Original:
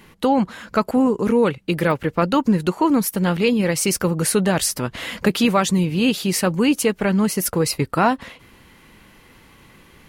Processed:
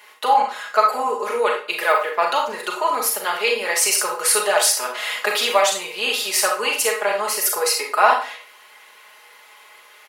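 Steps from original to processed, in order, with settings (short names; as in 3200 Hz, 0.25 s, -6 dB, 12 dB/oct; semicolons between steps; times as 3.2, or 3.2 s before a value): HPF 570 Hz 24 dB/oct; comb 4.8 ms, depth 75%; reverb RT60 0.40 s, pre-delay 28 ms, DRR 1 dB; gain +1 dB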